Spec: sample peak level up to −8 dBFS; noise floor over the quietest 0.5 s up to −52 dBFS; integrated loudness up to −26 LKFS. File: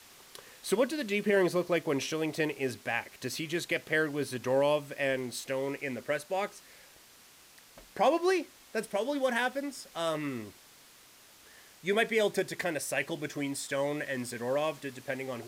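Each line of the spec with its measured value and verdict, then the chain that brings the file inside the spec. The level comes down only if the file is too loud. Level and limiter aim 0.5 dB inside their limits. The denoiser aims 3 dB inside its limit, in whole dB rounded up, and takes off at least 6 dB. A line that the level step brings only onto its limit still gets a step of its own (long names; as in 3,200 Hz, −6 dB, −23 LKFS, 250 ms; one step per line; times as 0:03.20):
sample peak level −15.5 dBFS: in spec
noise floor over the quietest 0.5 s −57 dBFS: in spec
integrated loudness −31.5 LKFS: in spec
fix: no processing needed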